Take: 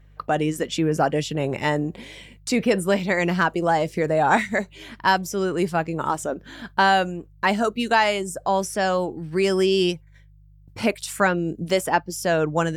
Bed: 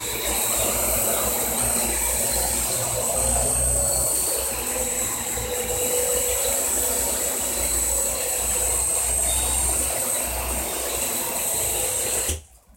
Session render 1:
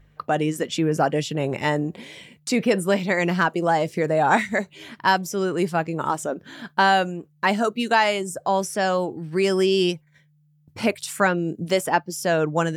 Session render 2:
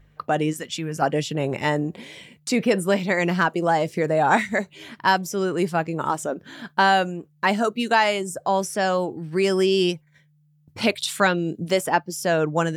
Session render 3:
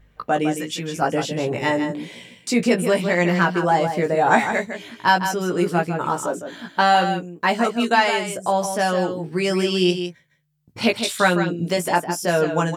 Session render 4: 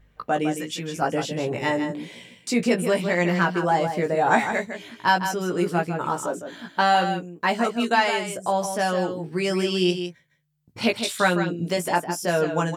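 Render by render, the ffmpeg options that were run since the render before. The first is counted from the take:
-af "bandreject=f=50:t=h:w=4,bandreject=f=100:t=h:w=4"
-filter_complex "[0:a]asettb=1/sr,asplit=3[a][b][c];[a]atrim=end=0.534[d];[b]atrim=start=0.53:end=1.02,asetpts=PTS-STARTPTS,afade=t=in:d=0.004:c=qsin,afade=t=out:st=0.486:d=0.004:c=qsin,equalizer=f=420:w=0.45:g=-10[e];[c]atrim=start=1.016[f];[d][e]acrossfade=d=0.004:c1=hsin:c2=qsin[g];[g][f]acrossfade=d=0.004:c1=qsin:c2=hsin,asettb=1/sr,asplit=3[h][i][j];[h]atrim=end=10.814[k];[i]atrim=start=10.81:end=11.58,asetpts=PTS-STARTPTS,afade=t=in:d=0.004:c=qsin,afade=t=out:st=0.766:d=0.004:c=qsin,equalizer=f=3.7k:w=2:g=12[l];[j]atrim=start=11.576[m];[k][l]acrossfade=d=0.004:c1=hsin:c2=qsin[n];[n][m]acrossfade=d=0.004:c1=qsin:c2=hsin"
-filter_complex "[0:a]asplit=2[a][b];[b]adelay=17,volume=-4dB[c];[a][c]amix=inputs=2:normalize=0,asplit=2[d][e];[e]aecho=0:1:157:0.376[f];[d][f]amix=inputs=2:normalize=0"
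-af "volume=-3dB"

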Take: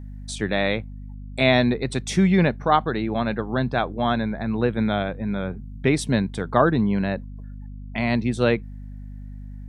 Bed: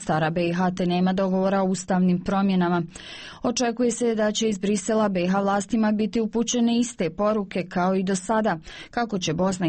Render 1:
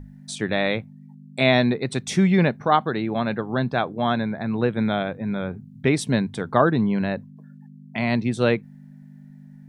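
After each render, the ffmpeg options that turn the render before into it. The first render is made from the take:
-af "bandreject=f=50:t=h:w=6,bandreject=f=100:t=h:w=6"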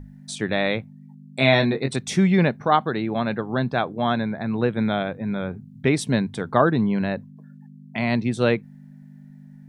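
-filter_complex "[0:a]asettb=1/sr,asplit=3[a][b][c];[a]atrim=end=1.404[d];[b]atrim=start=1.4:end=1.96,asetpts=PTS-STARTPTS,afade=t=in:d=0.004:c=qsin,afade=t=out:st=0.556:d=0.004:c=qsin,asplit=2[e][f];[f]adelay=22,volume=-5.5dB[g];[e][g]amix=inputs=2:normalize=0,atrim=end_sample=24696[h];[c]atrim=start=1.956[i];[d][h]acrossfade=d=0.004:c1=hsin:c2=qsin[j];[j][i]acrossfade=d=0.004:c1=qsin:c2=hsin"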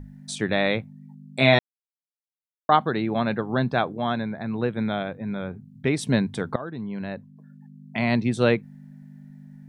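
-filter_complex "[0:a]asplit=6[a][b][c][d][e][f];[a]atrim=end=1.59,asetpts=PTS-STARTPTS,afade=t=out:st=1.586:d=0.004:c=hsin[g];[b]atrim=start=1.59:end=2.69,asetpts=PTS-STARTPTS,volume=0[h];[c]atrim=start=2.69:end=3.972,asetpts=PTS-STARTPTS,afade=t=in:d=0.004:c=hsin[i];[d]atrim=start=3.968:end=6.032,asetpts=PTS-STARTPTS,volume=-3.5dB[j];[e]atrim=start=6.028:end=6.56,asetpts=PTS-STARTPTS,afade=t=out:st=0.528:d=0.004:c=hsin:silence=0.0891251[k];[f]atrim=start=6.56,asetpts=PTS-STARTPTS,afade=t=in:d=1.4:silence=0.0891251[l];[g][h][i]concat=n=3:v=0:a=1[m];[m][j]acrossfade=d=0.004:c1=hsin:c2=hsin[n];[k][l]concat=n=2:v=0:a=1[o];[n][o]acrossfade=d=0.004:c1=hsin:c2=hsin"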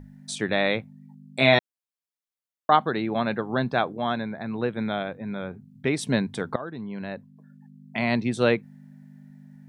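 -af "lowshelf=f=160:g=-7"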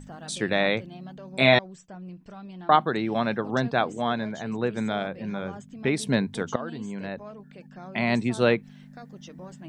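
-filter_complex "[1:a]volume=-20.5dB[a];[0:a][a]amix=inputs=2:normalize=0"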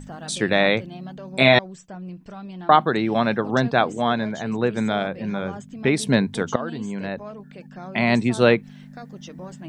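-af "volume=5dB,alimiter=limit=-2dB:level=0:latency=1"

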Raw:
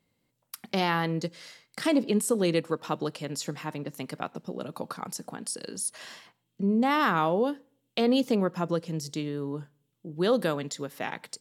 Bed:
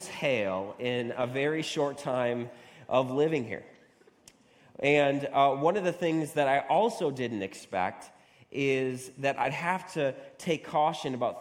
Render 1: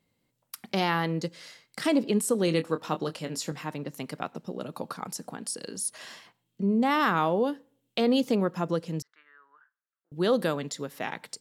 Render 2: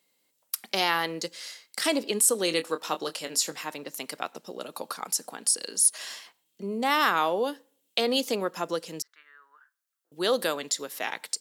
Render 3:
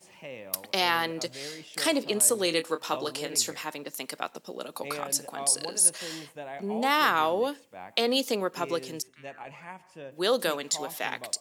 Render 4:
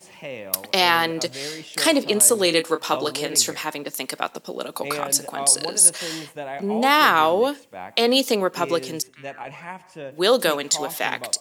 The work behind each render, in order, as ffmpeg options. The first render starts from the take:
-filter_complex "[0:a]asettb=1/sr,asplit=3[a][b][c];[a]atrim=end=2.454[d];[b]atrim=start=2.45:end=3.52,asetpts=PTS-STARTPTS,afade=t=in:d=0.004:c=qsin,afade=t=out:st=1.066:d=0.004:c=qsin,asplit=2[e][f];[f]adelay=25,volume=-9.5dB[g];[e][g]amix=inputs=2:normalize=0,atrim=end_sample=47187[h];[c]atrim=start=3.516[i];[d][h]acrossfade=d=0.004:c1=hsin:c2=qsin[j];[j][i]acrossfade=d=0.004:c1=qsin:c2=hsin,asettb=1/sr,asplit=3[k][l][m];[k]atrim=end=9.024[n];[l]atrim=start=9.02:end=10.12,asetpts=PTS-STARTPTS,afade=t=in:d=0.004:c=qsin,afade=t=out:st=1.096:d=0.004:c=qsin,asuperpass=centerf=1500:order=4:qfactor=2.5[o];[m]atrim=start=10.116[p];[n][o]acrossfade=d=0.004:c1=hsin:c2=qsin[q];[q][p]acrossfade=d=0.004:c1=qsin:c2=hsin"
-af "highpass=360,highshelf=f=3.1k:g=11.5"
-filter_complex "[1:a]volume=-14dB[a];[0:a][a]amix=inputs=2:normalize=0"
-af "volume=7.5dB,alimiter=limit=-2dB:level=0:latency=1"

